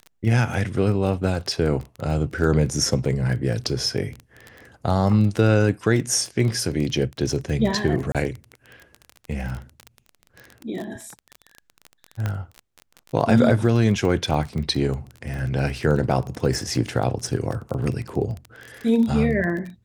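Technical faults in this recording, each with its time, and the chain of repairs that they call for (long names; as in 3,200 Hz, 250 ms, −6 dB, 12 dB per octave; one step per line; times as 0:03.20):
surface crackle 23 per second −27 dBFS
0:08.12–0:08.15: drop-out 27 ms
0:12.26: click −13 dBFS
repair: click removal
repair the gap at 0:08.12, 27 ms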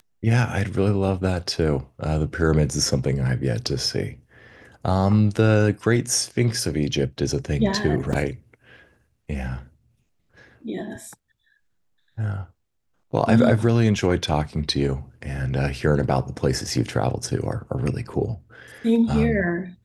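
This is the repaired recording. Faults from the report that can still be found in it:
none of them is left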